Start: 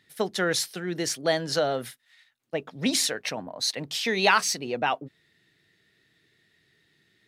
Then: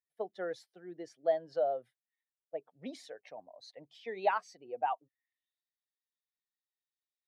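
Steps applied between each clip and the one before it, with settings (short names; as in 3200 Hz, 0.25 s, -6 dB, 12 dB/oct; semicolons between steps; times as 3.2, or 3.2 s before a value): per-bin expansion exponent 1.5; band-pass sweep 670 Hz -> 5800 Hz, 4.79–5.7; gain -1.5 dB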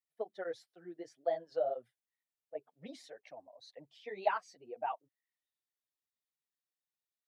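tape flanging out of phase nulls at 2 Hz, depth 7.4 ms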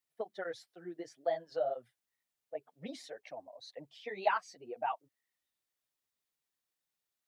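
dynamic EQ 430 Hz, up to -7 dB, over -46 dBFS, Q 0.82; gain +5 dB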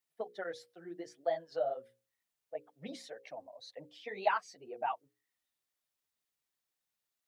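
notches 60/120/180/240/300/360/420/480/540 Hz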